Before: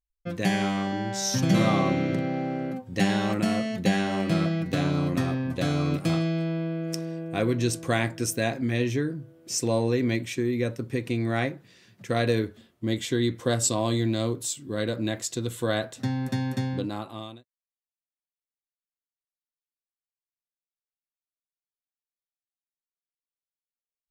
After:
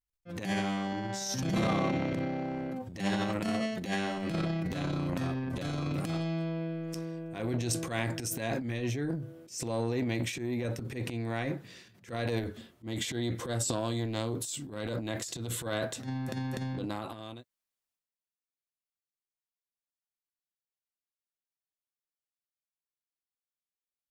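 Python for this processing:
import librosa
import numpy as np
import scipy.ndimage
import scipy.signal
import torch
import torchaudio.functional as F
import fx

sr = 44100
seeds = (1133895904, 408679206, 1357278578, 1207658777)

y = fx.peak_eq(x, sr, hz=92.0, db=-9.0, octaves=1.7, at=(3.6, 4.18))
y = fx.transient(y, sr, attack_db=-12, sustain_db=11)
y = fx.transformer_sat(y, sr, knee_hz=460.0)
y = y * 10.0 ** (-6.0 / 20.0)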